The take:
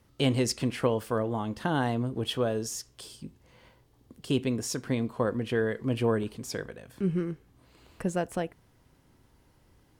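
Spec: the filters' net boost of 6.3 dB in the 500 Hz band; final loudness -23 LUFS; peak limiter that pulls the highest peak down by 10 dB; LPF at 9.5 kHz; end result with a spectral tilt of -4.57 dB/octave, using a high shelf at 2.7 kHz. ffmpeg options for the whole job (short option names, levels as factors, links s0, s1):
-af "lowpass=9500,equalizer=f=500:t=o:g=7,highshelf=f=2700:g=8,volume=2,alimiter=limit=0.266:level=0:latency=1"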